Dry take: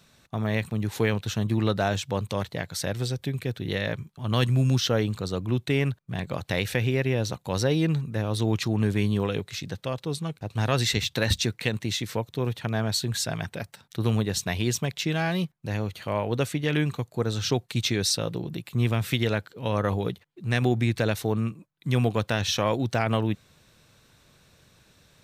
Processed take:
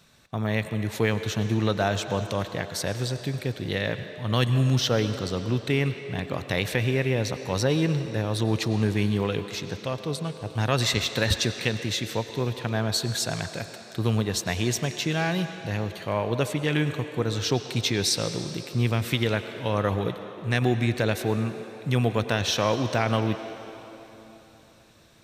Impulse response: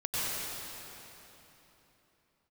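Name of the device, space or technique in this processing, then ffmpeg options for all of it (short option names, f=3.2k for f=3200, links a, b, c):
filtered reverb send: -filter_complex "[0:a]asplit=2[a][b];[b]highpass=280,lowpass=8.7k[c];[1:a]atrim=start_sample=2205[d];[c][d]afir=irnorm=-1:irlink=0,volume=-16dB[e];[a][e]amix=inputs=2:normalize=0"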